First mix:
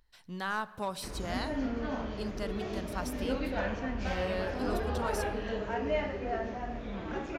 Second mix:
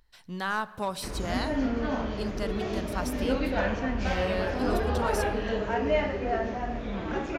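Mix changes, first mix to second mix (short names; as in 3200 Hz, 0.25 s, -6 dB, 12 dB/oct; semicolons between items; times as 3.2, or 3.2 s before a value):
speech +4.0 dB; background +5.5 dB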